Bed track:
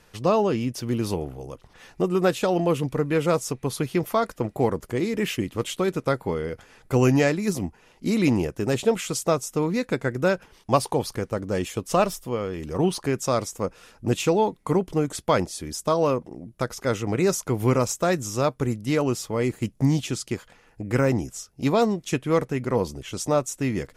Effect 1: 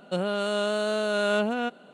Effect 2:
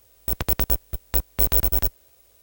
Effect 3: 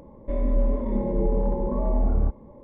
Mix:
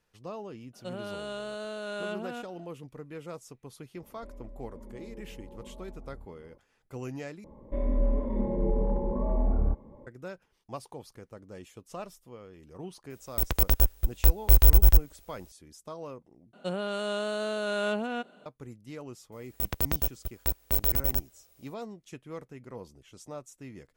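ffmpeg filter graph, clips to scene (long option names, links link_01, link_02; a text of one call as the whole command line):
ffmpeg -i bed.wav -i cue0.wav -i cue1.wav -i cue2.wav -filter_complex "[1:a]asplit=2[link_01][link_02];[3:a]asplit=2[link_03][link_04];[2:a]asplit=2[link_05][link_06];[0:a]volume=-19.5dB[link_07];[link_03]acompressor=threshold=-32dB:ratio=6:attack=3.2:release=140:knee=1:detection=peak[link_08];[link_05]asubboost=boost=12:cutoff=65[link_09];[link_07]asplit=3[link_10][link_11][link_12];[link_10]atrim=end=7.444[link_13];[link_04]atrim=end=2.63,asetpts=PTS-STARTPTS,volume=-4dB[link_14];[link_11]atrim=start=10.066:end=16.534[link_15];[link_02]atrim=end=1.93,asetpts=PTS-STARTPTS,volume=-5dB[link_16];[link_12]atrim=start=18.456[link_17];[link_01]atrim=end=1.93,asetpts=PTS-STARTPTS,volume=-11dB,afade=type=in:duration=0.004:curve=hsin,afade=type=out:start_time=1.926:duration=0.004:curve=hsin,adelay=730[link_18];[link_08]atrim=end=2.63,asetpts=PTS-STARTPTS,volume=-11.5dB,afade=type=in:duration=0.004:curve=hsin,afade=type=out:start_time=2.626:duration=0.004:curve=hsin,adelay=3950[link_19];[link_09]atrim=end=2.42,asetpts=PTS-STARTPTS,volume=-3.5dB,afade=type=in:duration=0.004:curve=hsin,afade=type=out:start_time=2.416:duration=0.004:curve=hsin,adelay=13100[link_20];[link_06]atrim=end=2.42,asetpts=PTS-STARTPTS,volume=-6.5dB,afade=type=in:duration=0.004:curve=hsin,afade=type=out:start_time=2.416:duration=0.004:curve=hsin,adelay=19320[link_21];[link_13][link_14]acrossfade=duration=0.004:curve1=hsin:curve2=hsin[link_22];[link_22][link_15]acrossfade=duration=0.004:curve1=hsin:curve2=hsin[link_23];[link_23][link_16]acrossfade=duration=0.004:curve1=hsin:curve2=hsin[link_24];[link_24][link_17]acrossfade=duration=0.004:curve1=hsin:curve2=hsin[link_25];[link_25][link_18][link_19][link_20][link_21]amix=inputs=5:normalize=0" out.wav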